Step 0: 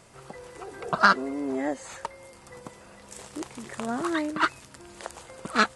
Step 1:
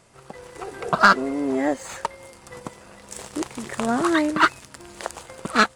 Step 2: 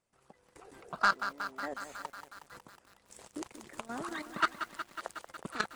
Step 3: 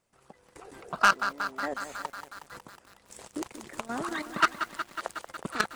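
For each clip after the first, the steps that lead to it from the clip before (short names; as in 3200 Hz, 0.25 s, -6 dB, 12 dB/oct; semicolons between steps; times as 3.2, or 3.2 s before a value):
AGC gain up to 4 dB; sample leveller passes 1
harmonic-percussive split harmonic -10 dB; level quantiser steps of 15 dB; lo-fi delay 0.183 s, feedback 80%, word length 7-bit, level -9.5 dB; gain -8.5 dB
self-modulated delay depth 0.053 ms; gain +6 dB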